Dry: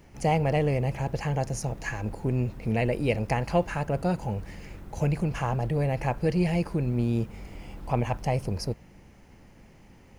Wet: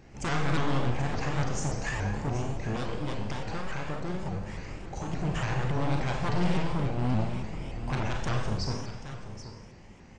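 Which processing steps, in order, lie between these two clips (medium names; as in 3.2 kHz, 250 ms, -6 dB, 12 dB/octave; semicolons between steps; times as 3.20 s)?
one-sided wavefolder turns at -27 dBFS; 2.76–5.14 s: compression, threshold -32 dBFS, peak gain reduction 11.5 dB; saturation -25 dBFS, distortion -12 dB; brick-wall FIR low-pass 8.7 kHz; delay 780 ms -12 dB; Schroeder reverb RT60 0.99 s, combs from 30 ms, DRR 1 dB; vibrato with a chosen wave saw up 3.5 Hz, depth 160 cents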